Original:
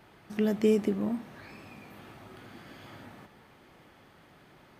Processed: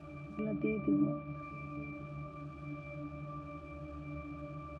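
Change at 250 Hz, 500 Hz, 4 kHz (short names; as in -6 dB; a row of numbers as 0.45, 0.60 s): -4.5 dB, -11.0 dB, under -15 dB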